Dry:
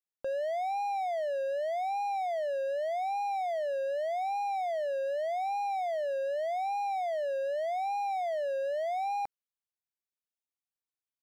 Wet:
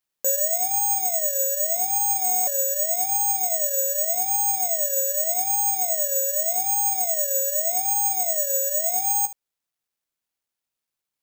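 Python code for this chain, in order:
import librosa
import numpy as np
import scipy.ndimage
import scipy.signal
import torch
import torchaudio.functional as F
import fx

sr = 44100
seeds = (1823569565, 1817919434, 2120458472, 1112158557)

p1 = fx.rider(x, sr, range_db=10, speed_s=0.5)
p2 = p1 + fx.room_early_taps(p1, sr, ms=(15, 73), db=(-8.5, -13.5), dry=0)
p3 = (np.kron(p2[::6], np.eye(6)[0]) * 6)[:len(p2)]
y = fx.buffer_glitch(p3, sr, at_s=(2.24,), block=1024, repeats=9)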